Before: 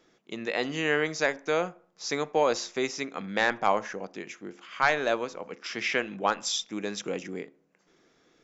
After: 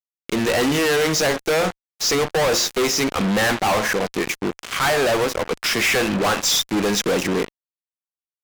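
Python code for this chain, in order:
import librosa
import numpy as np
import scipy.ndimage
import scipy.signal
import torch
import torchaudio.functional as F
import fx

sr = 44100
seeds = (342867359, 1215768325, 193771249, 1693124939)

y = fx.fuzz(x, sr, gain_db=44.0, gate_db=-43.0)
y = y * librosa.db_to_amplitude(-3.5)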